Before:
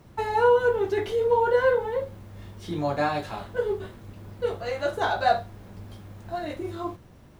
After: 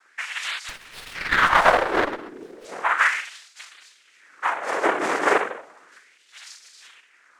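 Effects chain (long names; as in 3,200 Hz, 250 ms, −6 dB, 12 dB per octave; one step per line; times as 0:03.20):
dynamic equaliser 600 Hz, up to +4 dB, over −34 dBFS, Q 2.9
rectangular room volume 980 cubic metres, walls furnished, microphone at 2.3 metres
cochlear-implant simulation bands 3
auto-filter high-pass sine 0.34 Hz 310–4,600 Hz
0:00.69–0:02.65: windowed peak hold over 5 samples
level −3 dB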